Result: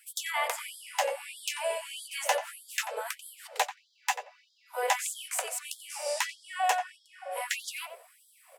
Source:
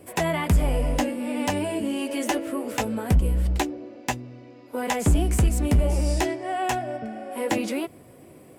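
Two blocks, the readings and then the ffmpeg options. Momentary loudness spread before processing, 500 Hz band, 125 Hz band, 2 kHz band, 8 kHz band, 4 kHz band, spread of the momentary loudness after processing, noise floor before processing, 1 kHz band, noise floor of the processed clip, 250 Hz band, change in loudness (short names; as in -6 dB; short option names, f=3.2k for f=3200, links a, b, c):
10 LU, -7.5 dB, under -40 dB, -1.0 dB, 0.0 dB, 0.0 dB, 11 LU, -49 dBFS, -2.5 dB, -66 dBFS, under -40 dB, -7.5 dB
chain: -filter_complex "[0:a]asplit=2[a][b];[b]adelay=89,lowpass=f=2k:p=1,volume=-10dB,asplit=2[c][d];[d]adelay=89,lowpass=f=2k:p=1,volume=0.17[e];[a][c][e]amix=inputs=3:normalize=0,afftfilt=real='re*gte(b*sr/1024,420*pow(3200/420,0.5+0.5*sin(2*PI*1.6*pts/sr)))':imag='im*gte(b*sr/1024,420*pow(3200/420,0.5+0.5*sin(2*PI*1.6*pts/sr)))':win_size=1024:overlap=0.75"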